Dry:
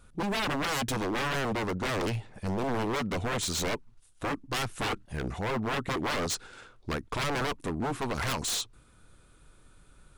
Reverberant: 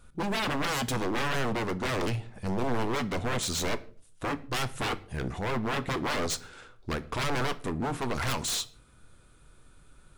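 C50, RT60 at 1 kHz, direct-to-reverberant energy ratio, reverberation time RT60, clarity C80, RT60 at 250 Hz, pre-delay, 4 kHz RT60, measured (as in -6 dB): 19.0 dB, 0.40 s, 12.0 dB, 0.45 s, 22.5 dB, 0.60 s, 8 ms, 0.30 s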